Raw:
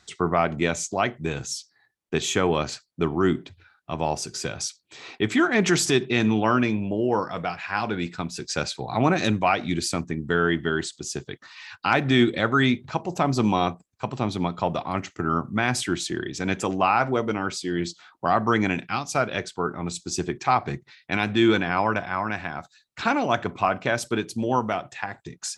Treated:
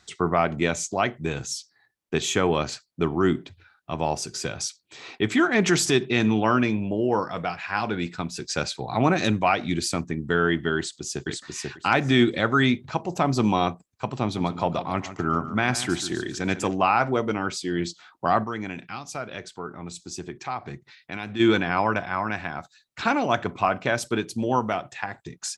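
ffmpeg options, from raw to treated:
ffmpeg -i in.wav -filter_complex "[0:a]asplit=2[link_01][link_02];[link_02]afade=type=in:start_time=10.77:duration=0.01,afade=type=out:start_time=11.28:duration=0.01,aecho=0:1:490|980|1470:0.794328|0.119149|0.0178724[link_03];[link_01][link_03]amix=inputs=2:normalize=0,asettb=1/sr,asplit=3[link_04][link_05][link_06];[link_04]atrim=end=14.224[link_07];[link_05]atrim=start=14.22:end=16.7,asetpts=PTS-STARTPTS,afade=type=in:duration=0.004:curve=qsin,afade=type=out:start_time=2.476:duration=0.004:curve=qsin,aecho=1:1:145|290|435|580:0.224|0.0828|0.0306|0.0113,atrim=end_sample=109368[link_08];[link_06]atrim=start=16.696[link_09];[link_07][link_08]acrossfade=duration=0.004:curve1=hsin:curve2=qsin[link_10];[link_10][link_09]acrossfade=duration=0.004:curve1=qsin:curve2=hsin,asplit=3[link_11][link_12][link_13];[link_11]afade=type=out:start_time=18.43:duration=0.02[link_14];[link_12]acompressor=threshold=-44dB:ratio=1.5:attack=3.2:release=140:knee=1:detection=peak,afade=type=in:start_time=18.43:duration=0.02,afade=type=out:start_time=21.39:duration=0.02[link_15];[link_13]afade=type=in:start_time=21.39:duration=0.02[link_16];[link_14][link_15][link_16]amix=inputs=3:normalize=0" out.wav

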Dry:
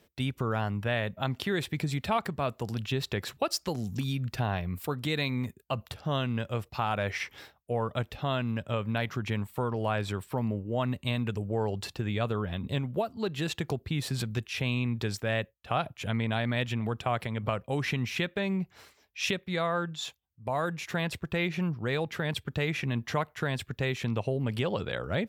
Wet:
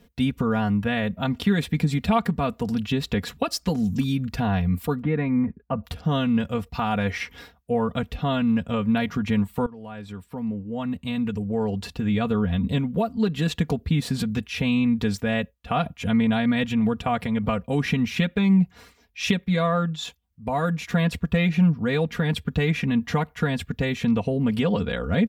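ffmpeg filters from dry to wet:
ffmpeg -i in.wav -filter_complex "[0:a]asettb=1/sr,asplit=3[link_01][link_02][link_03];[link_01]atrim=end=5.024[link_04];[link_02]atrim=start=5.02:end=5.84,asetpts=PTS-STARTPTS,afade=type=in:duration=0.004:curve=qsin,afade=type=out:start_time=0.816:duration=0.004:curve=qsin,lowpass=frequency=1900:width=0.5412,lowpass=frequency=1900:width=1.3066[link_05];[link_03]atrim=start=5.836[link_06];[link_04][link_05]acrossfade=duration=0.004:curve1=hsin:curve2=qsin[link_07];[link_07][link_06]acrossfade=duration=0.004:curve1=qsin:curve2=hsin,asplit=2[link_08][link_09];[link_08]atrim=end=9.66,asetpts=PTS-STARTPTS,afade=type=out:start_time=9.656:duration=0.004:curve=hsin:silence=0.105925[link_10];[link_09]atrim=start=9.66,asetpts=PTS-STARTPTS,afade=type=in:duration=2.75:silence=0.105925[link_11];[link_10][link_11]concat=n=2:v=0:a=1,bass=frequency=250:gain=11,treble=frequency=4000:gain=-2,aecho=1:1:4.2:0.8,volume=2dB" out.wav

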